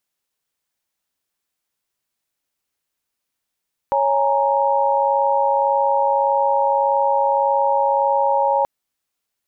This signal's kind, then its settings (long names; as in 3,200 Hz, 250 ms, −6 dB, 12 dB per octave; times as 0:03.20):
held notes C#5/G#5/A#5 sine, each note −19 dBFS 4.73 s